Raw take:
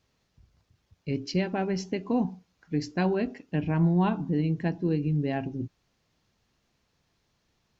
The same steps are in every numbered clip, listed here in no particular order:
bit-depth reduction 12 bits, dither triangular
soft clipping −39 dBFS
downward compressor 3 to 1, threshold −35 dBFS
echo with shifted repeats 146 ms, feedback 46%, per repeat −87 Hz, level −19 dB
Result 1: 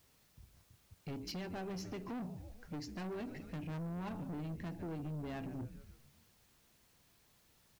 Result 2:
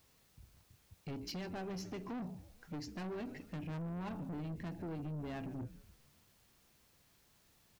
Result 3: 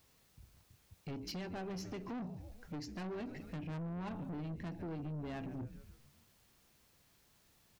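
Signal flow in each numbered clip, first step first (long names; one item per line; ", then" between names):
echo with shifted repeats, then downward compressor, then soft clipping, then bit-depth reduction
downward compressor, then bit-depth reduction, then echo with shifted repeats, then soft clipping
bit-depth reduction, then echo with shifted repeats, then downward compressor, then soft clipping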